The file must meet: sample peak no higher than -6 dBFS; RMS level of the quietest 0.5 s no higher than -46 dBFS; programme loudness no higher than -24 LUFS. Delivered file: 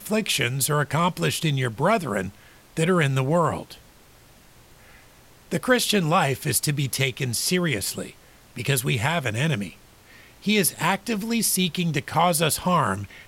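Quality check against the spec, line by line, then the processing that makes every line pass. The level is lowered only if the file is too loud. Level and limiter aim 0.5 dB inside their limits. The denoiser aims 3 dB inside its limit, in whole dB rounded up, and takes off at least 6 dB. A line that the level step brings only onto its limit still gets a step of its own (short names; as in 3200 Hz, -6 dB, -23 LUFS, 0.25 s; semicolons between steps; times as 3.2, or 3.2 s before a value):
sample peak -7.0 dBFS: OK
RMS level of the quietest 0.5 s -52 dBFS: OK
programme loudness -23.0 LUFS: fail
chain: gain -1.5 dB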